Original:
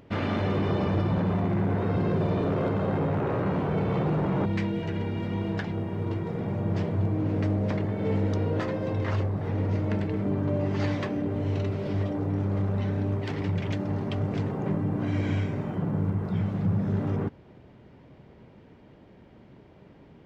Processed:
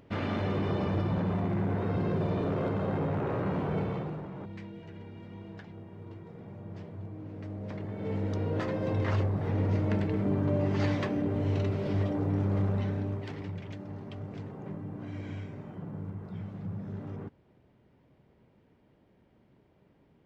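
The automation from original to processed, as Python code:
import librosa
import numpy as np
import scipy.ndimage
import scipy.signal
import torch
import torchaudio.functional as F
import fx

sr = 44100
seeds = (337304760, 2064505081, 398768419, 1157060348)

y = fx.gain(x, sr, db=fx.line((3.8, -4.0), (4.3, -15.5), (7.37, -15.5), (7.96, -8.0), (8.91, -1.0), (12.67, -1.0), (13.67, -12.0)))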